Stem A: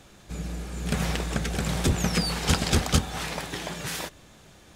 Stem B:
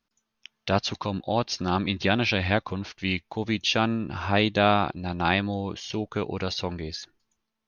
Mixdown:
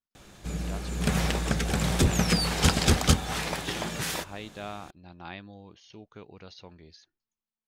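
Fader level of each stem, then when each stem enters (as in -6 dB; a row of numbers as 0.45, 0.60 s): +1.0, -18.0 dB; 0.15, 0.00 s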